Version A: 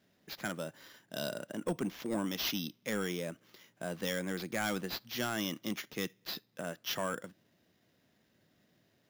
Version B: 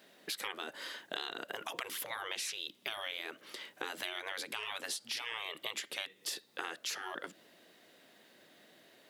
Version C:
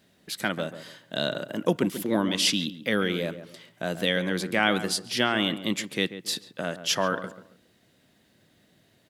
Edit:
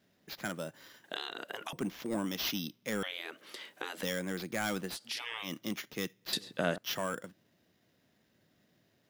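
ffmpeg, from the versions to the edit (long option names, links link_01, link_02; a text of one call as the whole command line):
ffmpeg -i take0.wav -i take1.wav -i take2.wav -filter_complex "[1:a]asplit=3[link_01][link_02][link_03];[0:a]asplit=5[link_04][link_05][link_06][link_07][link_08];[link_04]atrim=end=1.042[link_09];[link_01]atrim=start=1.038:end=1.732[link_10];[link_05]atrim=start=1.728:end=3.032[link_11];[link_02]atrim=start=3.028:end=4.032[link_12];[link_06]atrim=start=4.028:end=4.99[link_13];[link_03]atrim=start=4.89:end=5.52[link_14];[link_07]atrim=start=5.42:end=6.332[link_15];[2:a]atrim=start=6.328:end=6.782[link_16];[link_08]atrim=start=6.778[link_17];[link_09][link_10]acrossfade=duration=0.004:curve1=hsin:curve2=hsin[link_18];[link_18][link_11]acrossfade=duration=0.004:curve1=hsin:curve2=hsin[link_19];[link_19][link_12]acrossfade=duration=0.004:curve1=hsin:curve2=hsin[link_20];[link_20][link_13]acrossfade=duration=0.004:curve1=hsin:curve2=hsin[link_21];[link_21][link_14]acrossfade=duration=0.1:curve1=tri:curve2=tri[link_22];[link_22][link_15]acrossfade=duration=0.1:curve1=tri:curve2=tri[link_23];[link_23][link_16]acrossfade=duration=0.004:curve1=hsin:curve2=hsin[link_24];[link_24][link_17]acrossfade=duration=0.004:curve1=hsin:curve2=hsin" out.wav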